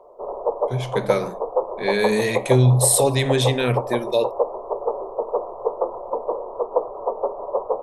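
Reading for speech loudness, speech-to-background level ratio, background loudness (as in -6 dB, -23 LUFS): -20.5 LUFS, 6.0 dB, -26.5 LUFS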